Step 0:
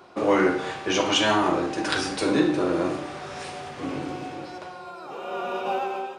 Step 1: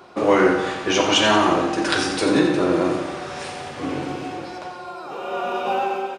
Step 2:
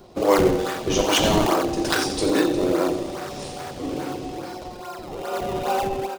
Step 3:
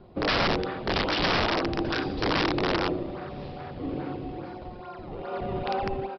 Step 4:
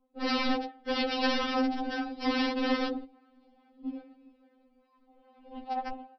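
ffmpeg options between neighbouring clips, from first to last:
ffmpeg -i in.wav -af "aecho=1:1:88|176|264|352|440|528|616:0.355|0.206|0.119|0.0692|0.0402|0.0233|0.0135,volume=4dB" out.wav
ffmpeg -i in.wav -filter_complex "[0:a]acrossover=split=270|870|3000[link_01][link_02][link_03][link_04];[link_01]acompressor=threshold=-36dB:ratio=6[link_05];[link_03]acrusher=samples=32:mix=1:aa=0.000001:lfo=1:lforange=51.2:lforate=2.4[link_06];[link_05][link_02][link_06][link_04]amix=inputs=4:normalize=0" out.wav
ffmpeg -i in.wav -af "bass=frequency=250:gain=7,treble=frequency=4000:gain=-14,aresample=11025,aeval=exprs='(mod(4.47*val(0)+1,2)-1)/4.47':channel_layout=same,aresample=44100,volume=-6dB" out.wav
ffmpeg -i in.wav -af "equalizer=frequency=150:width=0.49:gain=8,agate=range=-20dB:threshold=-24dB:ratio=16:detection=peak,afftfilt=real='re*3.46*eq(mod(b,12),0)':imag='im*3.46*eq(mod(b,12),0)':win_size=2048:overlap=0.75,volume=-3dB" out.wav

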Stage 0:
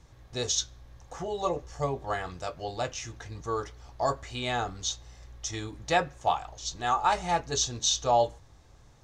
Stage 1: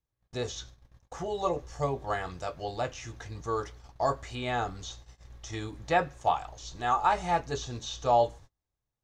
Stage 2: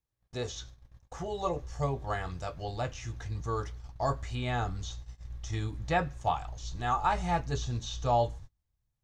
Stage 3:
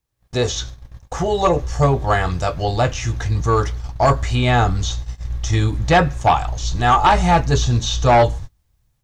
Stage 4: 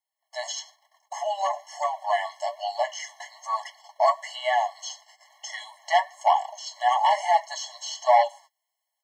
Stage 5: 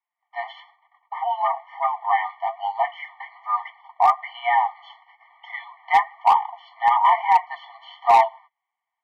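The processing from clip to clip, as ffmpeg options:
ffmpeg -i in.wav -filter_complex "[0:a]acrossover=split=2600[link_01][link_02];[link_02]acompressor=threshold=-43dB:ratio=4:attack=1:release=60[link_03];[link_01][link_03]amix=inputs=2:normalize=0,agate=range=-32dB:threshold=-47dB:ratio=16:detection=peak" out.wav
ffmpeg -i in.wav -af "asubboost=boost=3:cutoff=210,volume=-2dB" out.wav
ffmpeg -i in.wav -af "dynaudnorm=framelen=150:gausssize=3:maxgain=8dB,aeval=exprs='0.447*sin(PI/2*1.78*val(0)/0.447)':channel_layout=same" out.wav
ffmpeg -i in.wav -af "flanger=delay=2.2:depth=6.8:regen=48:speed=1.1:shape=triangular,afftfilt=real='re*eq(mod(floor(b*sr/1024/560),2),1)':imag='im*eq(mod(floor(b*sr/1024/560),2),1)':win_size=1024:overlap=0.75" out.wav
ffmpeg -i in.wav -af "highpass=frequency=550:width_type=q:width=0.5412,highpass=frequency=550:width_type=q:width=1.307,lowpass=frequency=2600:width_type=q:width=0.5176,lowpass=frequency=2600:width_type=q:width=0.7071,lowpass=frequency=2600:width_type=q:width=1.932,afreqshift=85,asoftclip=type=hard:threshold=-12.5dB,volume=4.5dB" out.wav

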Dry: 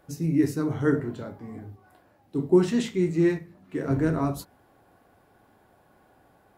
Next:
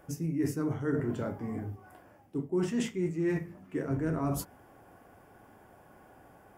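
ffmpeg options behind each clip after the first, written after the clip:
ffmpeg -i in.wav -af "equalizer=frequency=4000:width=4.9:gain=-14.5,areverse,acompressor=threshold=-32dB:ratio=5,areverse,volume=3.5dB" out.wav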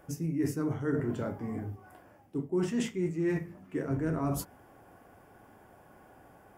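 ffmpeg -i in.wav -af anull out.wav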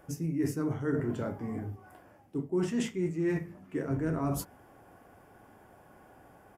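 ffmpeg -i in.wav -af "aresample=32000,aresample=44100" out.wav

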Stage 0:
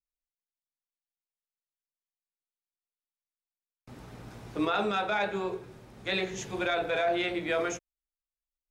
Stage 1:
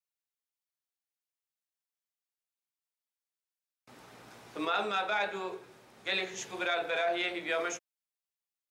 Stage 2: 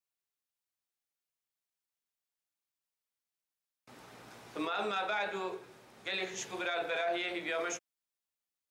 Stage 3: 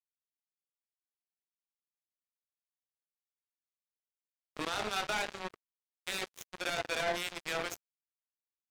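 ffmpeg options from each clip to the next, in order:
ffmpeg -i in.wav -af "highpass=frequency=690:poles=1" out.wav
ffmpeg -i in.wav -af "alimiter=level_in=1.5dB:limit=-24dB:level=0:latency=1:release=34,volume=-1.5dB" out.wav
ffmpeg -i in.wav -af "acrusher=bits=4:mix=0:aa=0.5,agate=range=-22dB:threshold=-58dB:ratio=16:detection=peak,acompressor=mode=upward:threshold=-50dB:ratio=2.5" out.wav

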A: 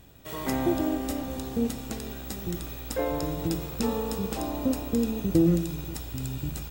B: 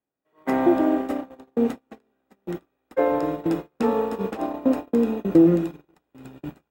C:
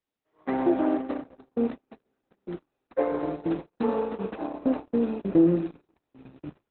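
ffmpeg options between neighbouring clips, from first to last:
ffmpeg -i in.wav -filter_complex "[0:a]agate=range=-37dB:threshold=-30dB:ratio=16:detection=peak,acrossover=split=210 2300:gain=0.0794 1 0.1[link_01][link_02][link_03];[link_01][link_02][link_03]amix=inputs=3:normalize=0,volume=8.5dB" out.wav
ffmpeg -i in.wav -af "volume=-4dB" -ar 48000 -c:a libopus -b:a 8k out.opus

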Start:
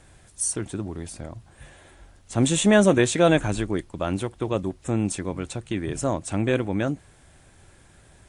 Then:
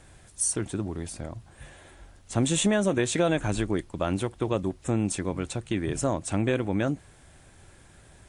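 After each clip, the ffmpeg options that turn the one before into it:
ffmpeg -i in.wav -af "acompressor=threshold=-20dB:ratio=6" out.wav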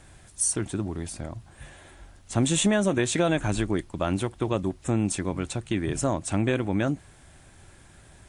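ffmpeg -i in.wav -af "equalizer=frequency=480:width_type=o:width=0.4:gain=-3.5,volume=1.5dB" out.wav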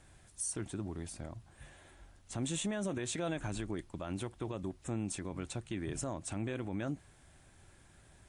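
ffmpeg -i in.wav -af "alimiter=limit=-19dB:level=0:latency=1:release=59,volume=-9dB" out.wav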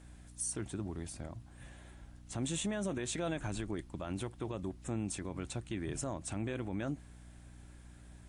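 ffmpeg -i in.wav -af "aeval=exprs='val(0)+0.00224*(sin(2*PI*60*n/s)+sin(2*PI*2*60*n/s)/2+sin(2*PI*3*60*n/s)/3+sin(2*PI*4*60*n/s)/4+sin(2*PI*5*60*n/s)/5)':channel_layout=same" out.wav

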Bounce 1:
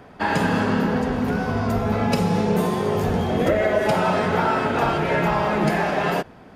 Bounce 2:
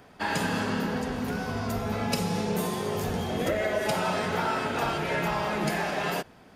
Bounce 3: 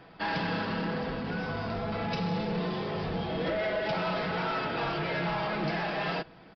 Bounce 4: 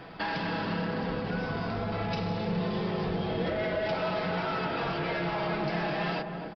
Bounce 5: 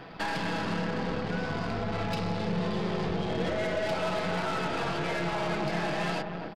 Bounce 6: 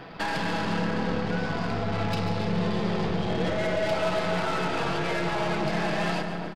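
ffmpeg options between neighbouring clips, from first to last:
ffmpeg -i in.wav -af "highshelf=frequency=3000:gain=11.5,volume=-8.5dB" out.wav
ffmpeg -i in.wav -af "aresample=11025,asoftclip=type=tanh:threshold=-27.5dB,aresample=44100,aecho=1:1:6.1:0.45" out.wav
ffmpeg -i in.wav -filter_complex "[0:a]acompressor=threshold=-41dB:ratio=2.5,asplit=2[link_01][link_02];[link_02]adelay=258,lowpass=frequency=820:poles=1,volume=-4dB,asplit=2[link_03][link_04];[link_04]adelay=258,lowpass=frequency=820:poles=1,volume=0.5,asplit=2[link_05][link_06];[link_06]adelay=258,lowpass=frequency=820:poles=1,volume=0.5,asplit=2[link_07][link_08];[link_08]adelay=258,lowpass=frequency=820:poles=1,volume=0.5,asplit=2[link_09][link_10];[link_10]adelay=258,lowpass=frequency=820:poles=1,volume=0.5,asplit=2[link_11][link_12];[link_12]adelay=258,lowpass=frequency=820:poles=1,volume=0.5[link_13];[link_01][link_03][link_05][link_07][link_09][link_11][link_13]amix=inputs=7:normalize=0,volume=7dB" out.wav
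ffmpeg -i in.wav -af "aeval=exprs='0.0944*(cos(1*acos(clip(val(0)/0.0944,-1,1)))-cos(1*PI/2))+0.00841*(cos(8*acos(clip(val(0)/0.0944,-1,1)))-cos(8*PI/2))':channel_layout=same" out.wav
ffmpeg -i in.wav -af "aecho=1:1:143|286|429|572|715:0.299|0.149|0.0746|0.0373|0.0187,volume=2.5dB" out.wav

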